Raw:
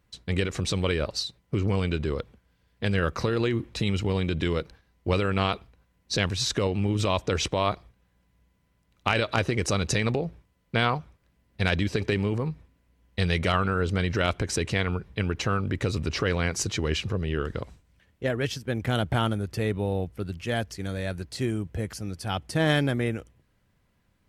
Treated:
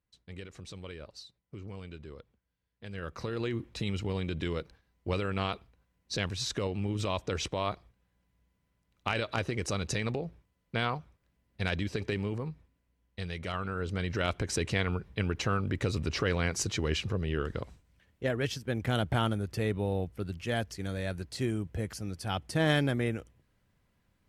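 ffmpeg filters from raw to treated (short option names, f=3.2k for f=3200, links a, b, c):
-af "volume=3dB,afade=t=in:st=2.87:d=0.67:silence=0.281838,afade=t=out:st=12.28:d=1.08:silence=0.473151,afade=t=in:st=13.36:d=1.27:silence=0.316228"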